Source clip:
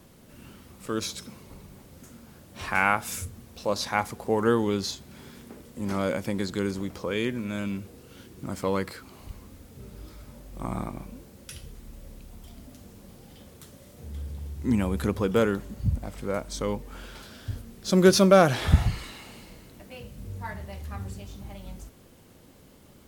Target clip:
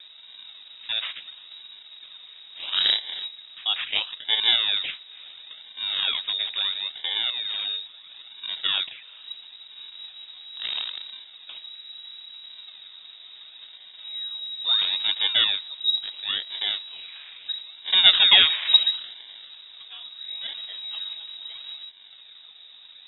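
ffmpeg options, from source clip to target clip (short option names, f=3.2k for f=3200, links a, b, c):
-filter_complex "[0:a]acrossover=split=380|1600[a][b][c];[a]acompressor=mode=upward:threshold=-42dB:ratio=2.5[d];[d][b][c]amix=inputs=3:normalize=0,acrusher=samples=23:mix=1:aa=0.000001:lfo=1:lforange=23:lforate=0.74,lowpass=f=3.3k:t=q:w=0.5098,lowpass=f=3.3k:t=q:w=0.6013,lowpass=f=3.3k:t=q:w=0.9,lowpass=f=3.3k:t=q:w=2.563,afreqshift=-3900,volume=1.5dB"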